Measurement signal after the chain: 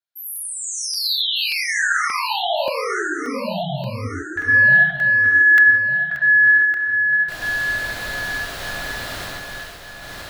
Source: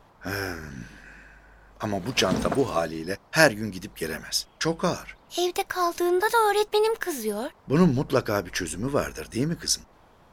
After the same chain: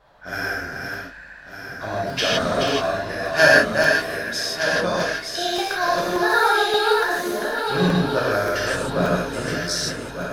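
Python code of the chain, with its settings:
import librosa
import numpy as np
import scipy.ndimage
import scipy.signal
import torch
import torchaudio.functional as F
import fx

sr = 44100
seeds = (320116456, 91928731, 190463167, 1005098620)

y = fx.reverse_delay_fb(x, sr, ms=602, feedback_pct=58, wet_db=-4.5)
y = fx.graphic_eq_15(y, sr, hz=(630, 1600, 4000), db=(9, 11, 9))
y = fx.rev_gated(y, sr, seeds[0], gate_ms=190, shape='flat', drr_db=-6.5)
y = fx.buffer_crackle(y, sr, first_s=0.36, period_s=0.58, block=64, kind='zero')
y = y * librosa.db_to_amplitude(-10.0)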